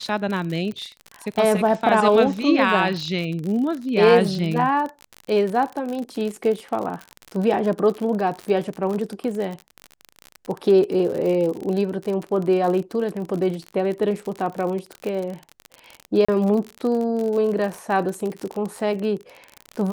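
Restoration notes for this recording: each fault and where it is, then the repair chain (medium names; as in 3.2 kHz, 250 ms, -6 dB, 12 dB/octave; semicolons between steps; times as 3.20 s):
crackle 47 per s -26 dBFS
16.25–16.29 s: dropout 35 ms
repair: de-click; interpolate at 16.25 s, 35 ms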